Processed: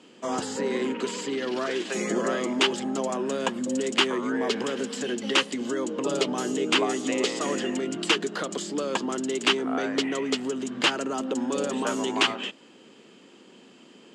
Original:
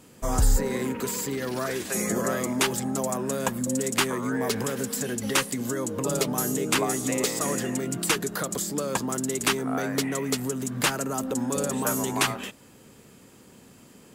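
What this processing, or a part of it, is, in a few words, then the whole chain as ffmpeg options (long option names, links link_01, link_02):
television speaker: -af "highpass=frequency=200:width=0.5412,highpass=frequency=200:width=1.3066,equalizer=frequency=350:width_type=q:width=4:gain=5,equalizer=frequency=3000:width_type=q:width=4:gain=9,equalizer=frequency=5900:width_type=q:width=4:gain=-4,lowpass=frequency=6600:width=0.5412,lowpass=frequency=6600:width=1.3066"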